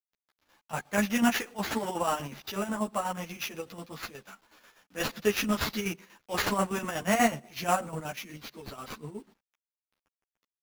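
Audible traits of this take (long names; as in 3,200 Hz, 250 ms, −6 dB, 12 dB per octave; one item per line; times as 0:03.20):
a quantiser's noise floor 10 bits, dither none
chopped level 8.2 Hz, depth 60%, duty 55%
aliases and images of a low sample rate 8,600 Hz, jitter 0%
a shimmering, thickened sound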